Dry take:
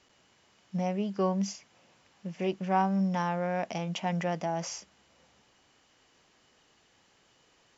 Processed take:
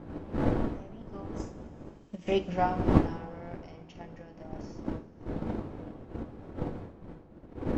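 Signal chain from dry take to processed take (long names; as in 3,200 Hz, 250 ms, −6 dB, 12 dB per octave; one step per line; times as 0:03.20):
source passing by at 0:02.44, 18 m/s, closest 2.4 metres
wind on the microphone 330 Hz −38 dBFS
convolution reverb, pre-delay 3 ms, DRR 3 dB
transient designer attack +8 dB, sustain −1 dB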